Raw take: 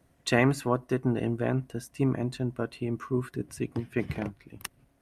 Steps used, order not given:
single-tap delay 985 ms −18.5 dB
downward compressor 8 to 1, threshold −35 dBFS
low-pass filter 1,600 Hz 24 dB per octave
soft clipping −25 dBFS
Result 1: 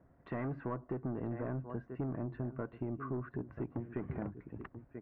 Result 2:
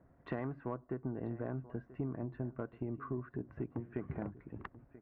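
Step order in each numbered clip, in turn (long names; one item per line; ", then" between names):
single-tap delay, then soft clipping, then downward compressor, then low-pass filter
low-pass filter, then downward compressor, then single-tap delay, then soft clipping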